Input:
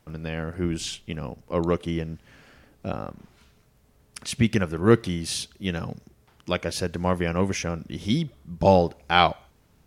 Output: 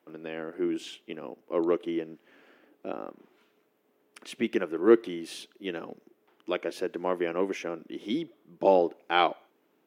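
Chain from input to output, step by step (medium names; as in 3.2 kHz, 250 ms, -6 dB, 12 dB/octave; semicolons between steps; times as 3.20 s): ladder high-pass 280 Hz, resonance 50%; high-order bell 6.8 kHz -9 dB; trim +3.5 dB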